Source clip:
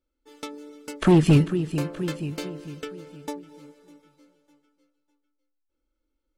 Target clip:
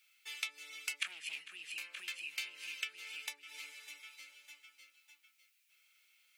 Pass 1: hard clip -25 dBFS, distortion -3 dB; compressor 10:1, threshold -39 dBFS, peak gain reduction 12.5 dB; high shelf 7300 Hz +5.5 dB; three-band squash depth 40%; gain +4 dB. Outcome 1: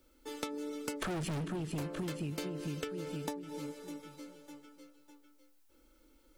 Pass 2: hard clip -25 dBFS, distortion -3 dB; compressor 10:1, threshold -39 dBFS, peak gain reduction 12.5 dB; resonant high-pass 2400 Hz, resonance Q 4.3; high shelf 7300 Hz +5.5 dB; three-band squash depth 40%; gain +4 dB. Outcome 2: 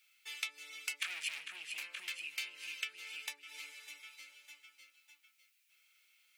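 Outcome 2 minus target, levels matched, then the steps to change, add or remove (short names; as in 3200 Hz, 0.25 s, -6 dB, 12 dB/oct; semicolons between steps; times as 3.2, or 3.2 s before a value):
hard clip: distortion +12 dB
change: hard clip -14 dBFS, distortion -15 dB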